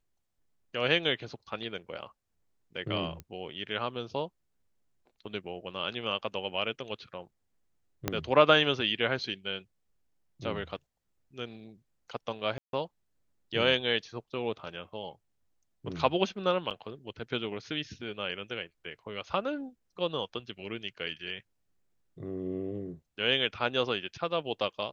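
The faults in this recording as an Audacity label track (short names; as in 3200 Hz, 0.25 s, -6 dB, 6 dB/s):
3.200000	3.200000	pop -27 dBFS
8.080000	8.080000	pop -12 dBFS
12.580000	12.730000	gap 0.152 s
16.700000	16.710000	gap 7.9 ms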